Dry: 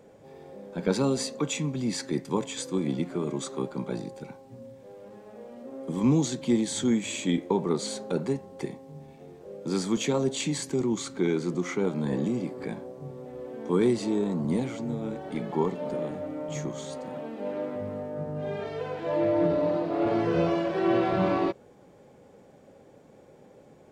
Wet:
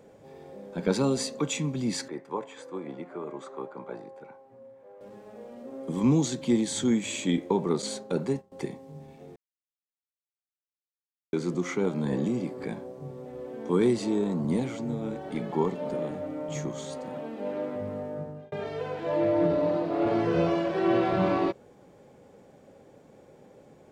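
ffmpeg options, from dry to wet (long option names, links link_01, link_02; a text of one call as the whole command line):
ffmpeg -i in.wav -filter_complex "[0:a]asettb=1/sr,asplit=3[link_01][link_02][link_03];[link_01]atrim=end=2.084[link_04];[link_02]atrim=start=2.08:end=5.01,asetpts=PTS-STARTPTS,afade=type=in:duration=0.004:curve=qsin,afade=type=out:start_time=2.926:duration=0.004:curve=qsin,acrossover=split=420 2000:gain=0.158 1 0.112[link_05][link_06][link_07];[link_05][link_06][link_07]amix=inputs=3:normalize=0[link_08];[link_03]atrim=start=5.006[link_09];[link_04][link_08]acrossfade=duration=0.004:curve1=hsin:curve2=qsin[link_10];[link_10][link_09]acrossfade=duration=0.004:curve1=qsin:curve2=hsin,asettb=1/sr,asplit=3[link_11][link_12][link_13];[link_11]atrim=end=7.824[link_14];[link_12]atrim=start=7.82:end=8.52,asetpts=PTS-STARTPTS,afade=type=in:duration=0.004:curve=qsin,afade=type=out:start_time=0.696:duration=0.004:curve=qsin,agate=range=-33dB:threshold=-35dB:ratio=3:release=100:detection=peak[link_15];[link_13]atrim=start=8.516[link_16];[link_14][link_15]acrossfade=duration=0.004:curve1=hsin:curve2=qsin[link_17];[link_17][link_16]acrossfade=duration=0.004:curve1=qsin:curve2=hsin,asplit=4[link_18][link_19][link_20][link_21];[link_18]atrim=end=9.36,asetpts=PTS-STARTPTS,afade=type=out:start_time=9.356:duration=0.004:curve=hsin[link_22];[link_19]atrim=start=9.36:end=11.33,asetpts=PTS-STARTPTS,volume=0[link_23];[link_20]atrim=start=11.33:end=18.52,asetpts=PTS-STARTPTS,afade=type=in:duration=0.004:curve=hsin,afade=type=out:start_time=6.79:duration=0.4[link_24];[link_21]atrim=start=18.52,asetpts=PTS-STARTPTS,afade=type=in:duration=0.004:curve=hsin[link_25];[link_22][link_23][link_24][link_25]concat=n=4:v=0:a=1" out.wav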